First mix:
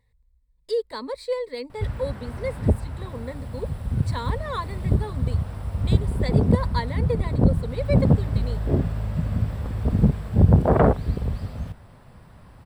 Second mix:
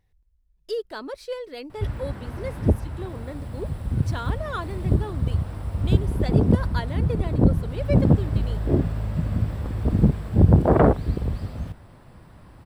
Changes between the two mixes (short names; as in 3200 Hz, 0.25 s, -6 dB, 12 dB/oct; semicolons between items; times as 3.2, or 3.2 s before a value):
speech: remove ripple EQ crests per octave 0.98, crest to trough 12 dB; master: add bell 320 Hz +7.5 dB 0.31 oct